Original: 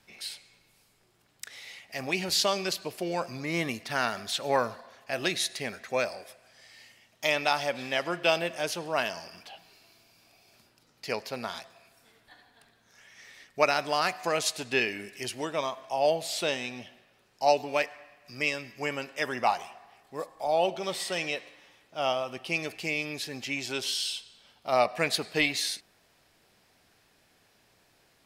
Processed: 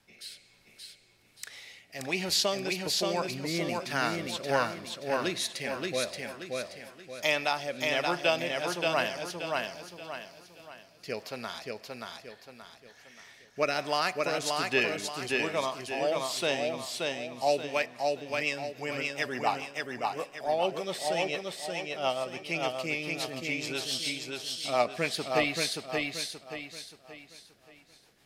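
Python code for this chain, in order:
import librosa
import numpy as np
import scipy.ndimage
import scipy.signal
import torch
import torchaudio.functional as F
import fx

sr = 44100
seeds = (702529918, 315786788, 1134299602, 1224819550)

y = fx.rotary_switch(x, sr, hz=1.2, then_hz=7.0, switch_at_s=17.39)
y = fx.echo_feedback(y, sr, ms=578, feedback_pct=38, wet_db=-3.0)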